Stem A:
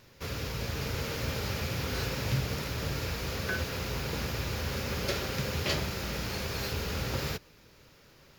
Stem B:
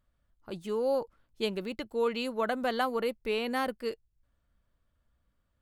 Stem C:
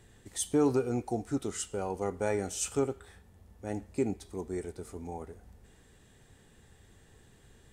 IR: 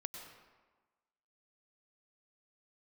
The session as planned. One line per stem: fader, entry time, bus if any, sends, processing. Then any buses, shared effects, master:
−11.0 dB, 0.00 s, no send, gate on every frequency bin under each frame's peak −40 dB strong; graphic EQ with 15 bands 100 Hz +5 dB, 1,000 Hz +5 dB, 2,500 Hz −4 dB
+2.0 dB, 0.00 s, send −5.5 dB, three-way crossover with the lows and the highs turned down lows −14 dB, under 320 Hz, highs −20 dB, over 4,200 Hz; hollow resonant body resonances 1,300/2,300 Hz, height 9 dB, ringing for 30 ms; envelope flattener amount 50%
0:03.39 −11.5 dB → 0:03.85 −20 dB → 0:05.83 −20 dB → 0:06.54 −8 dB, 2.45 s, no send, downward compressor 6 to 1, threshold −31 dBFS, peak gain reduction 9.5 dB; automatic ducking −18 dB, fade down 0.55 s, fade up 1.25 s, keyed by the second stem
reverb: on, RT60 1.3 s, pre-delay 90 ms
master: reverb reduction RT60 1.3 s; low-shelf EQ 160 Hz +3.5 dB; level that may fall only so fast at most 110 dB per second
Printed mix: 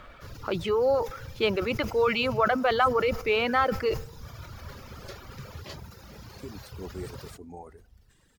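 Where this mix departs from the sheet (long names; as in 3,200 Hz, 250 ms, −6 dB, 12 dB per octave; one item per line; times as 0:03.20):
stem A: missing gate on every frequency bin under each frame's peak −40 dB strong
stem C −11.5 dB → −5.0 dB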